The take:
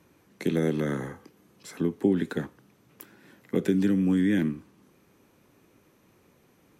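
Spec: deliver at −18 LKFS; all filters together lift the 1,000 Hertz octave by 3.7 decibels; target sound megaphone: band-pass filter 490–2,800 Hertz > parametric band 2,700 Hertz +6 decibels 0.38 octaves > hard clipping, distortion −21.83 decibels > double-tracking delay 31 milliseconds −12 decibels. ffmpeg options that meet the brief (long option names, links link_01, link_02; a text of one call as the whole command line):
ffmpeg -i in.wav -filter_complex "[0:a]highpass=490,lowpass=2800,equalizer=frequency=1000:width_type=o:gain=5.5,equalizer=frequency=2700:width_type=o:width=0.38:gain=6,asoftclip=type=hard:threshold=-23dB,asplit=2[link_01][link_02];[link_02]adelay=31,volume=-12dB[link_03];[link_01][link_03]amix=inputs=2:normalize=0,volume=17dB" out.wav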